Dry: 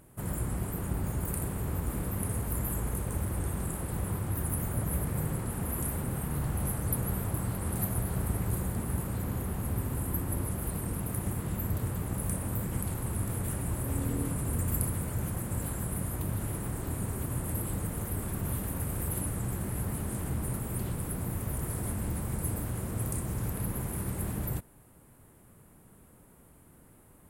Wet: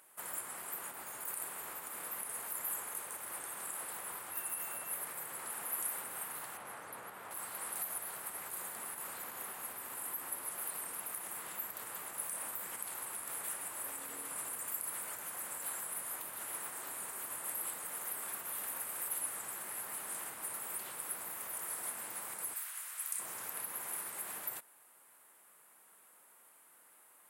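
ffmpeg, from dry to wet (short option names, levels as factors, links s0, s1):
-filter_complex "[0:a]asettb=1/sr,asplit=3[s0][s1][s2];[s0]atrim=end=4.334[s3];[s1]atrim=start=4.33:end=4.92,asetpts=PTS-STARTPTS,afade=t=in:d=0.004:c=qsin,afade=t=out:st=0.586:d=0.004:c=qsin,aeval=exprs='val(0)+0.00158*sin(2*PI*2700*n/s)':c=same[s4];[s2]atrim=start=4.916[s5];[s3][s4]acrossfade=d=0.004:c1=hsin:c2=qsin[s6];[s6][s5]acrossfade=d=0.004:c1=qsin:c2=hsin,asettb=1/sr,asplit=3[s7][s8][s9];[s7]atrim=end=6.574[s10];[s8]atrim=start=6.57:end=7.31,asetpts=PTS-STARTPTS,afade=t=in:d=0.004:c=qsin,afade=t=out:st=0.736:d=0.004:c=qsin,aemphasis=mode=reproduction:type=75fm[s11];[s9]atrim=start=7.306[s12];[s10][s11]acrossfade=d=0.004:c1=hsin:c2=qsin[s13];[s13][s12]acrossfade=d=0.004:c1=qsin:c2=hsin,asplit=3[s14][s15][s16];[s14]afade=t=out:st=22.53:d=0.02[s17];[s15]highpass=1500,afade=t=in:st=22.53:d=0.02,afade=t=out:st=23.18:d=0.02[s18];[s16]afade=t=in:st=23.18:d=0.02[s19];[s17][s18][s19]amix=inputs=3:normalize=0,alimiter=level_in=1.06:limit=0.0631:level=0:latency=1:release=104,volume=0.944,highpass=1000,volume=1.19"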